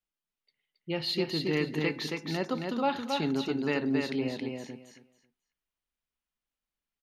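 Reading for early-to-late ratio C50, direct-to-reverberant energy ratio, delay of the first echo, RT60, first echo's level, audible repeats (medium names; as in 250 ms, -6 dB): no reverb, no reverb, 272 ms, no reverb, -4.0 dB, 3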